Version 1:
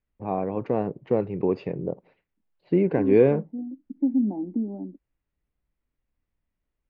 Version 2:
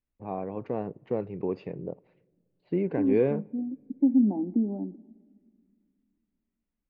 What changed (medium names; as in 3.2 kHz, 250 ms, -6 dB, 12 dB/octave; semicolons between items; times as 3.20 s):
first voice -7.0 dB; reverb: on, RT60 1.8 s